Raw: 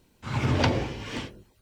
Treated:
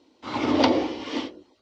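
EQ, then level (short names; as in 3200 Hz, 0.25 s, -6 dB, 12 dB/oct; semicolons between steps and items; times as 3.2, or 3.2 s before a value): speaker cabinet 100–5400 Hz, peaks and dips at 120 Hz -5 dB, 220 Hz -5 dB, 400 Hz -6 dB, 1600 Hz -10 dB, 2500 Hz -6 dB; resonant low shelf 210 Hz -10.5 dB, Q 3; +5.5 dB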